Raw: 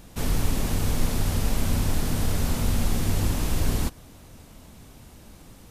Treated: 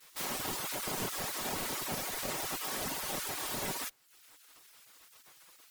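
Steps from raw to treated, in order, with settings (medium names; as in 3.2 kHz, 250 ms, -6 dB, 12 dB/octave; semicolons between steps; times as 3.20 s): comb filter that takes the minimum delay 5.7 ms; spectral gate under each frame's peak -20 dB weak; frequency shift -120 Hz; reverb removal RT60 0.57 s; formant shift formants +6 st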